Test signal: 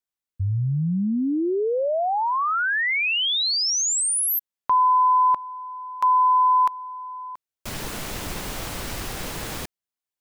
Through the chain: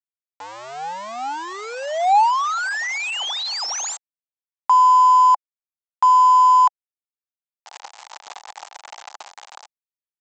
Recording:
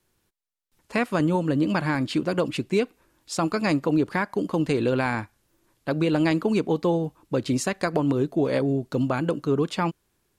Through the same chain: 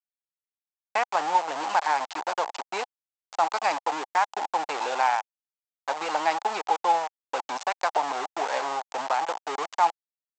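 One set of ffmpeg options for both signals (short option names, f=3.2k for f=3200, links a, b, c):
-af "aresample=16000,aeval=exprs='val(0)*gte(abs(val(0)),0.0596)':c=same,aresample=44100,highpass=f=820:t=q:w=5.5,volume=-3.5dB"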